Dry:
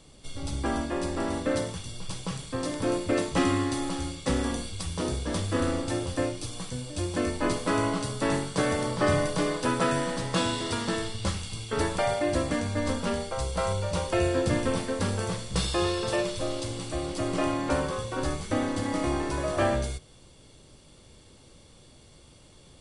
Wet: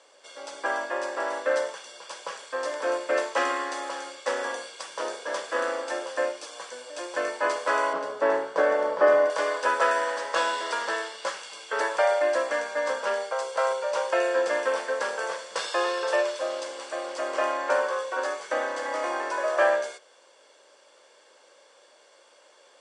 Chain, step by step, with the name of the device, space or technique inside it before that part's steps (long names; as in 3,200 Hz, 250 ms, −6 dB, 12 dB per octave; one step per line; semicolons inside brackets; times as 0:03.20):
0:07.93–0:09.30: spectral tilt −4 dB per octave
phone speaker on a table (loudspeaker in its box 460–7,800 Hz, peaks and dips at 560 Hz +7 dB, 980 Hz +6 dB, 1,600 Hz +10 dB, 3,900 Hz −5 dB)